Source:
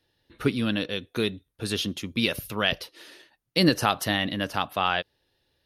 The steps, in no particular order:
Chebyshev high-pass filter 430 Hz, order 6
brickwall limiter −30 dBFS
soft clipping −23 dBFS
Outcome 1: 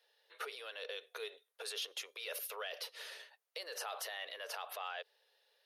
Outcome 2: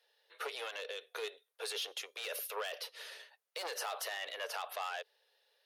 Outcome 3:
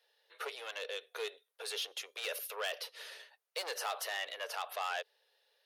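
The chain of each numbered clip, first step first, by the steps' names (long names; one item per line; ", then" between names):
brickwall limiter, then soft clipping, then Chebyshev high-pass filter
soft clipping, then Chebyshev high-pass filter, then brickwall limiter
soft clipping, then brickwall limiter, then Chebyshev high-pass filter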